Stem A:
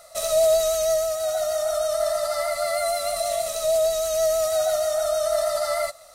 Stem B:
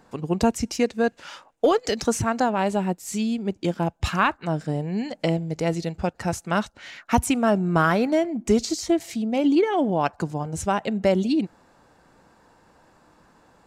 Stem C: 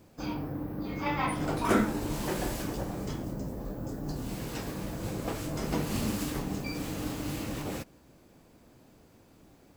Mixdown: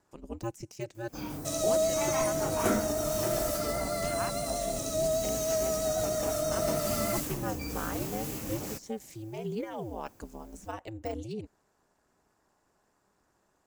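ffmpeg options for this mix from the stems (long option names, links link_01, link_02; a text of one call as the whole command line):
ffmpeg -i stem1.wav -i stem2.wav -i stem3.wav -filter_complex "[0:a]acrossover=split=7800[link_01][link_02];[link_02]acompressor=threshold=-49dB:ratio=4:attack=1:release=60[link_03];[link_01][link_03]amix=inputs=2:normalize=0,adelay=1300,volume=-8.5dB[link_04];[1:a]deesser=0.8,highpass=58,aeval=exprs='val(0)*sin(2*PI*110*n/s)':channel_layout=same,volume=-13dB[link_05];[2:a]adelay=950,volume=-4dB[link_06];[link_04][link_05][link_06]amix=inputs=3:normalize=0,aexciter=amount=3.1:drive=2.9:freq=5600" out.wav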